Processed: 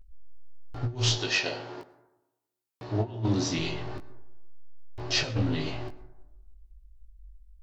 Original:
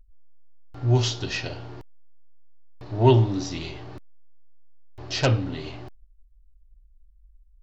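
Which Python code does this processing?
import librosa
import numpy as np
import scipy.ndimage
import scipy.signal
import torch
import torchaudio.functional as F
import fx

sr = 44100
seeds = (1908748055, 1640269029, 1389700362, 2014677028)

y = fx.highpass(x, sr, hz=fx.line((1.15, 340.0), (3.57, 80.0)), slope=12, at=(1.15, 3.57), fade=0.02)
y = fx.over_compress(y, sr, threshold_db=-25.0, ratio=-0.5)
y = fx.doubler(y, sr, ms=19.0, db=-4.0)
y = fx.rev_plate(y, sr, seeds[0], rt60_s=1.0, hf_ratio=0.35, predelay_ms=85, drr_db=16.0)
y = fx.doppler_dist(y, sr, depth_ms=0.16)
y = F.gain(torch.from_numpy(y), -2.0).numpy()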